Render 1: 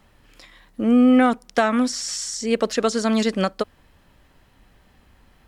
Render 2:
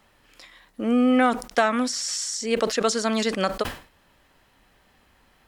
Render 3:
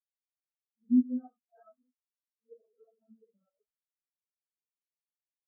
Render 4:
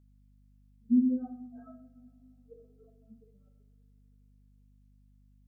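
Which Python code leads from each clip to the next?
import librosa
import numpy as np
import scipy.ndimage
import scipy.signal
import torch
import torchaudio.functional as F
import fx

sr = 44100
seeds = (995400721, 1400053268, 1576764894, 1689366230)

y1 = fx.low_shelf(x, sr, hz=260.0, db=-10.0)
y1 = fx.sustainer(y1, sr, db_per_s=140.0)
y2 = fx.phase_scramble(y1, sr, seeds[0], window_ms=200)
y2 = fx.spectral_expand(y2, sr, expansion=4.0)
y2 = y2 * 10.0 ** (-7.0 / 20.0)
y3 = fx.rev_double_slope(y2, sr, seeds[1], early_s=0.59, late_s=3.8, knee_db=-22, drr_db=4.5)
y3 = fx.add_hum(y3, sr, base_hz=50, snr_db=25)
y3 = y3 * 10.0 ** (3.5 / 20.0)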